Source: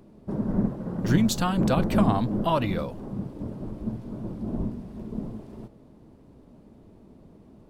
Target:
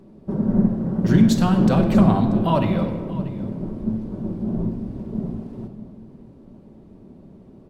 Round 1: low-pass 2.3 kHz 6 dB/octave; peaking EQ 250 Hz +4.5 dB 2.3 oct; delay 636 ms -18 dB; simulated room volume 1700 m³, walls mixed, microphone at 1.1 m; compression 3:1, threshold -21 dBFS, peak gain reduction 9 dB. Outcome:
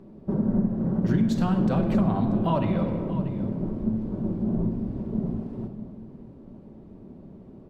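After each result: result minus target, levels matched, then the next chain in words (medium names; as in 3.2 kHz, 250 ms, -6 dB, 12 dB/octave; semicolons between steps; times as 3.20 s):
compression: peak gain reduction +9 dB; 8 kHz band -8.0 dB
low-pass 2.3 kHz 6 dB/octave; peaking EQ 250 Hz +4.5 dB 2.3 oct; delay 636 ms -18 dB; simulated room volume 1700 m³, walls mixed, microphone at 1.1 m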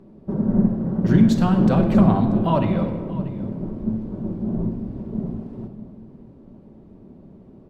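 8 kHz band -7.0 dB
low-pass 7.5 kHz 6 dB/octave; peaking EQ 250 Hz +4.5 dB 2.3 oct; delay 636 ms -18 dB; simulated room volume 1700 m³, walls mixed, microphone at 1.1 m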